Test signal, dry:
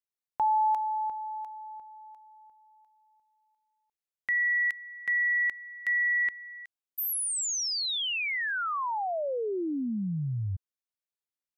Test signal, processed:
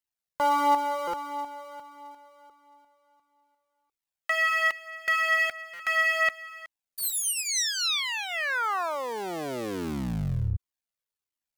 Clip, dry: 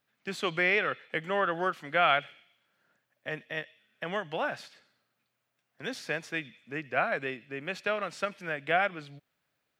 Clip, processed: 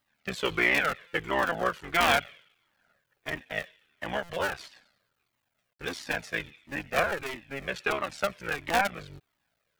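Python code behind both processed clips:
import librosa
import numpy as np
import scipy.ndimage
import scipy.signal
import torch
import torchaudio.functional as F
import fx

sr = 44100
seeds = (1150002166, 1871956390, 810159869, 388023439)

y = fx.cycle_switch(x, sr, every=3, mode='muted')
y = fx.buffer_glitch(y, sr, at_s=(1.07, 4.23, 5.73), block=256, repeats=10)
y = fx.comb_cascade(y, sr, direction='falling', hz=1.5)
y = y * librosa.db_to_amplitude(8.0)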